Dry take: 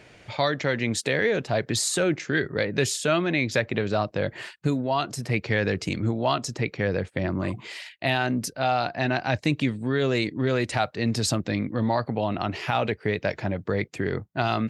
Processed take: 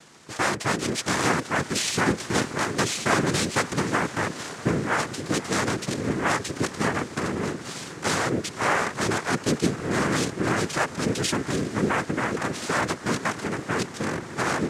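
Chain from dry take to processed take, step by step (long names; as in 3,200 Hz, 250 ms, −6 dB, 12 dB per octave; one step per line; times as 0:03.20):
feedback delay with all-pass diffusion 554 ms, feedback 79%, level −16 dB
cochlear-implant simulation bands 3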